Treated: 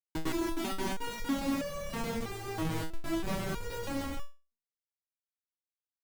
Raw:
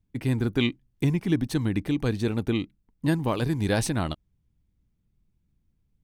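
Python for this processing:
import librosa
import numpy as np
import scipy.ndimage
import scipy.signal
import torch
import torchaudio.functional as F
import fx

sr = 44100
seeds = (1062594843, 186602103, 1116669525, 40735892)

p1 = fx.cycle_switch(x, sr, every=3, mode='inverted', at=(1.1, 2.15))
p2 = 10.0 ** (-22.5 / 20.0) * np.tanh(p1 / 10.0 ** (-22.5 / 20.0))
p3 = p1 + F.gain(torch.from_numpy(p2), -6.5).numpy()
p4 = fx.filter_sweep_highpass(p3, sr, from_hz=340.0, to_hz=64.0, start_s=0.28, end_s=3.48, q=6.8)
p5 = p4 + fx.echo_feedback(p4, sr, ms=214, feedback_pct=50, wet_db=-7.5, dry=0)
p6 = fx.schmitt(p5, sr, flips_db=-20.5)
p7 = fx.resonator_held(p6, sr, hz=3.1, low_hz=160.0, high_hz=570.0)
y = F.gain(torch.from_numpy(p7), 1.0).numpy()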